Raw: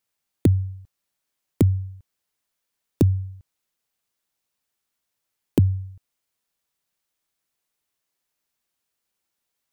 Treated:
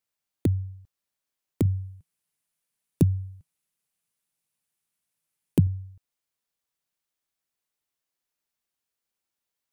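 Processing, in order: 1.65–5.67 fifteen-band EQ 160 Hz +10 dB, 2500 Hz +3 dB, 10000 Hz +9 dB; gain -6 dB

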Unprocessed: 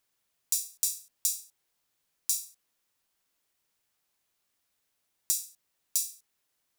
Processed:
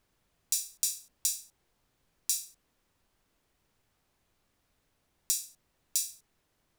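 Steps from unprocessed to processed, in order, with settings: tilt -3 dB/oct; gain +8 dB

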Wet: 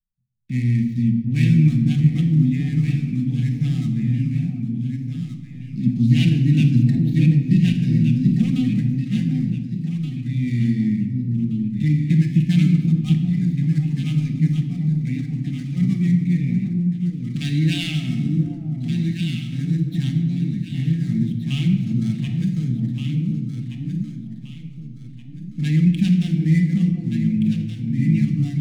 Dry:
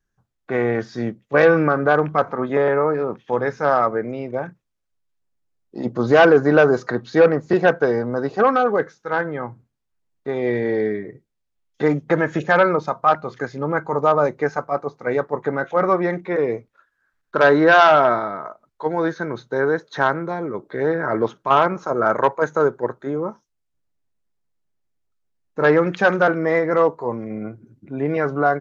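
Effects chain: median filter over 9 samples; high shelf 5000 Hz -5 dB; echo with dull and thin repeats by turns 0.737 s, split 860 Hz, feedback 58%, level -3 dB; gate with hold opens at -32 dBFS; inverse Chebyshev band-stop 380–1500 Hz, stop band 40 dB; low shelf 500 Hz +8.5 dB; shoebox room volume 1100 m³, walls mixed, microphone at 1 m; gain +1.5 dB

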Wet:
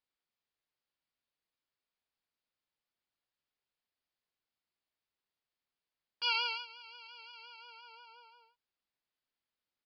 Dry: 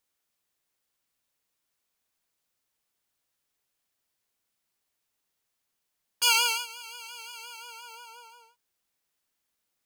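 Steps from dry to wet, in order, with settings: downsampling 11025 Hz; gain -8.5 dB

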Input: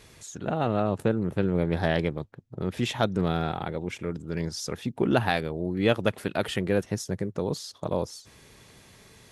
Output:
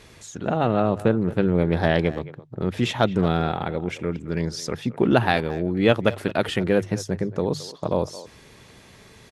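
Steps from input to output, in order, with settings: high shelf 7000 Hz -8 dB; notches 50/100/150 Hz; speakerphone echo 0.22 s, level -16 dB; gain +5 dB

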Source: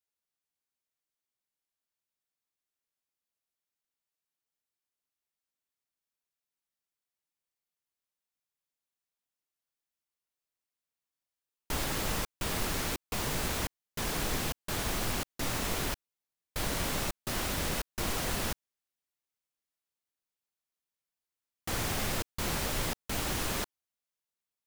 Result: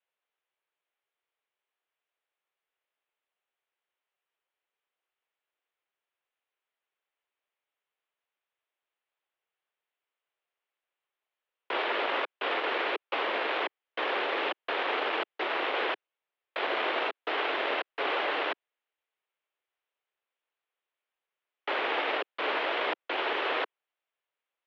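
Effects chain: one diode to ground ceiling -25 dBFS; mistuned SSB +79 Hz 300–3200 Hz; gain +8.5 dB

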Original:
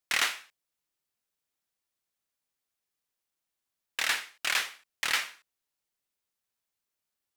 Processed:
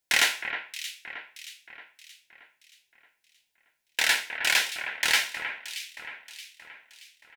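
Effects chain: Butterworth band-stop 1200 Hz, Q 4.1; doubler 13 ms -11.5 dB; echo with dull and thin repeats by turns 0.313 s, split 2500 Hz, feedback 66%, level -8 dB; gain +5 dB

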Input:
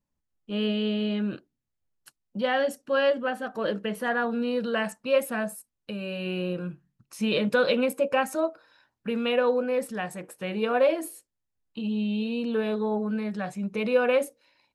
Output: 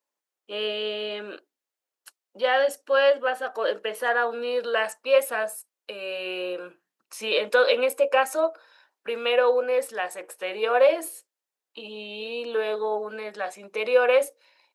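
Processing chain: HPF 410 Hz 24 dB/oct; gain +4 dB

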